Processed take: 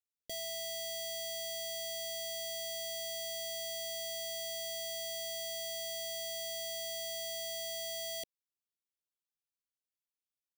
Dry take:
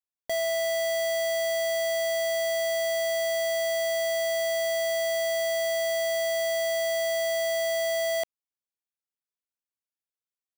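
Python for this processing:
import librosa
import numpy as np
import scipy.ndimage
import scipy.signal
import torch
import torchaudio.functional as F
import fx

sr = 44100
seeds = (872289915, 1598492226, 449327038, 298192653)

y = scipy.signal.sosfilt(scipy.signal.cheby1(2, 1.0, [440.0, 3100.0], 'bandstop', fs=sr, output='sos'), x)
y = fx.peak_eq(y, sr, hz=610.0, db=-2.5, octaves=1.6)
y = F.gain(torch.from_numpy(y), -4.5).numpy()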